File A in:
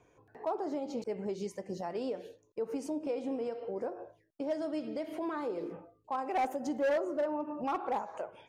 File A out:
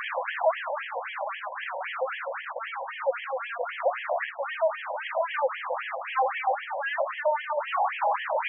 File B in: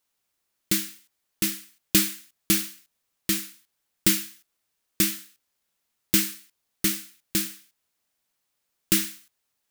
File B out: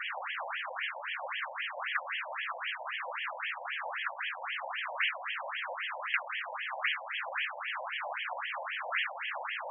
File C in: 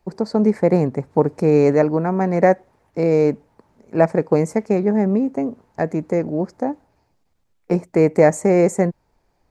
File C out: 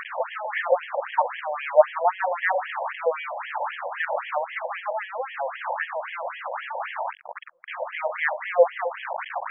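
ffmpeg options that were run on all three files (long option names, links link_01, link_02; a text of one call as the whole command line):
ffmpeg -i in.wav -af "aeval=exprs='val(0)+0.5*0.0944*sgn(val(0))':channel_layout=same,aemphasis=mode=reproduction:type=bsi,afftfilt=real='re*between(b*sr/1024,690*pow(2400/690,0.5+0.5*sin(2*PI*3.8*pts/sr))/1.41,690*pow(2400/690,0.5+0.5*sin(2*PI*3.8*pts/sr))*1.41)':imag='im*between(b*sr/1024,690*pow(2400/690,0.5+0.5*sin(2*PI*3.8*pts/sr))/1.41,690*pow(2400/690,0.5+0.5*sin(2*PI*3.8*pts/sr))*1.41)':win_size=1024:overlap=0.75,volume=4dB" out.wav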